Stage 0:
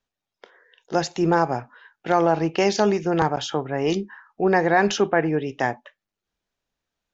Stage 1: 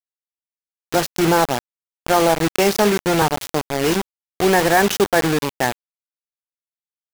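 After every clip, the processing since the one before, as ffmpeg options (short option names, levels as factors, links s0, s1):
-af "acrusher=bits=3:mix=0:aa=0.000001,volume=1.41"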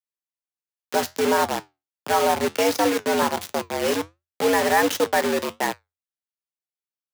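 -af "flanger=delay=8.1:depth=4.6:regen=-71:speed=1.4:shape=triangular,afreqshift=84"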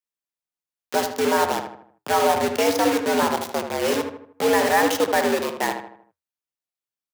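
-filter_complex "[0:a]asplit=2[s0][s1];[s1]adelay=78,lowpass=f=2200:p=1,volume=0.473,asplit=2[s2][s3];[s3]adelay=78,lowpass=f=2200:p=1,volume=0.46,asplit=2[s4][s5];[s5]adelay=78,lowpass=f=2200:p=1,volume=0.46,asplit=2[s6][s7];[s7]adelay=78,lowpass=f=2200:p=1,volume=0.46,asplit=2[s8][s9];[s9]adelay=78,lowpass=f=2200:p=1,volume=0.46[s10];[s0][s2][s4][s6][s8][s10]amix=inputs=6:normalize=0"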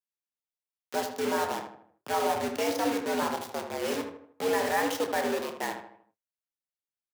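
-filter_complex "[0:a]flanger=delay=3.6:depth=9.5:regen=81:speed=1.8:shape=triangular,asplit=2[s0][s1];[s1]adelay=28,volume=0.282[s2];[s0][s2]amix=inputs=2:normalize=0,volume=0.596"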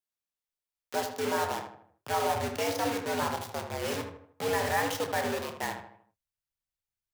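-af "asubboost=boost=11:cutoff=91"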